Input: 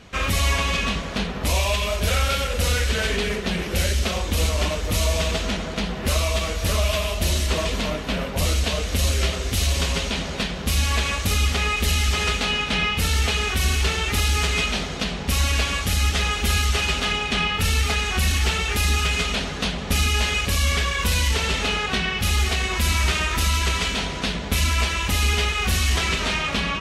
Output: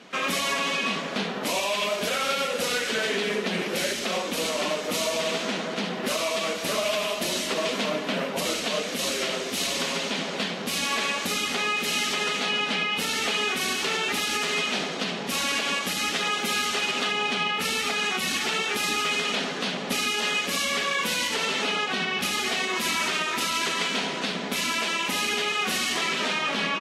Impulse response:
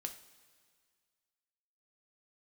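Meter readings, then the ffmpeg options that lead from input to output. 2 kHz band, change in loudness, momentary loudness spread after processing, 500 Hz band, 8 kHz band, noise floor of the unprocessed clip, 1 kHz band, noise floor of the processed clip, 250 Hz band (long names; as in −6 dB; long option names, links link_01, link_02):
−1.5 dB, −3.0 dB, 3 LU, −0.5 dB, −3.0 dB, −30 dBFS, −1.0 dB, −32 dBFS, −3.0 dB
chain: -af "highpass=frequency=210:width=0.5412,highpass=frequency=210:width=1.3066,highshelf=frequency=6100:gain=-6.5,alimiter=limit=-17.5dB:level=0:latency=1:release=71,aecho=1:1:72|144|216:0.251|0.0829|0.0274,volume=1dB" -ar 48000 -c:a libvorbis -b:a 48k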